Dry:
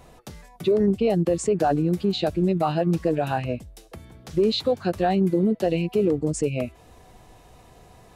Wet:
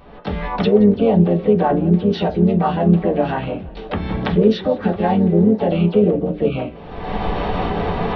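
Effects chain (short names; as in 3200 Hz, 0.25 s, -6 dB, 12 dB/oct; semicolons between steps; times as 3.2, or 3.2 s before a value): recorder AGC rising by 48 dB/s; downsampling 8000 Hz; harmoniser -12 st -10 dB, +3 st -6 dB, +7 st -16 dB; on a send at -2 dB: reverb RT60 0.25 s, pre-delay 3 ms; on the sum: warbling echo 0.166 s, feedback 66%, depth 154 cents, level -22 dB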